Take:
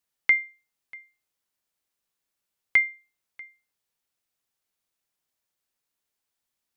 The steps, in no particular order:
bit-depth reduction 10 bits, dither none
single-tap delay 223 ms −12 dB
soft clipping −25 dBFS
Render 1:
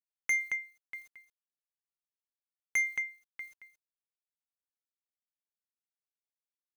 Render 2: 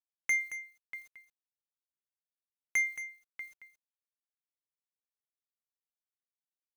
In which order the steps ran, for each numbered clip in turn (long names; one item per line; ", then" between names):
bit-depth reduction, then single-tap delay, then soft clipping
bit-depth reduction, then soft clipping, then single-tap delay